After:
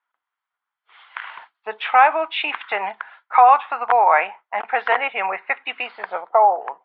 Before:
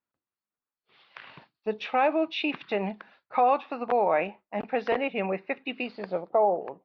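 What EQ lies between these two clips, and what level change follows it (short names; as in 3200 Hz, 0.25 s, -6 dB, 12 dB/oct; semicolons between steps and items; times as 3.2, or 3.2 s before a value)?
speaker cabinet 440–3700 Hz, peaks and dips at 470 Hz +4 dB, 690 Hz +4 dB, 980 Hz +6 dB, 1400 Hz +6 dB, 2200 Hz +6 dB, 3200 Hz +10 dB; band shelf 1200 Hz +11.5 dB; high shelf 2200 Hz +8.5 dB; -4.0 dB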